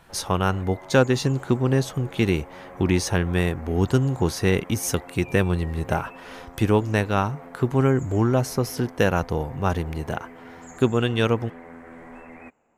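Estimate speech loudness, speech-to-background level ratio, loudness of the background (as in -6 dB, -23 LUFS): -23.5 LUFS, 19.5 dB, -43.0 LUFS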